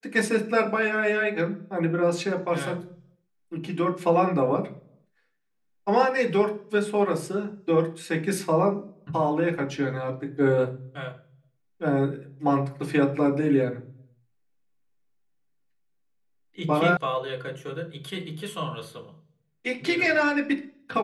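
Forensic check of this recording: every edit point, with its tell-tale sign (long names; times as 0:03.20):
0:16.97: cut off before it has died away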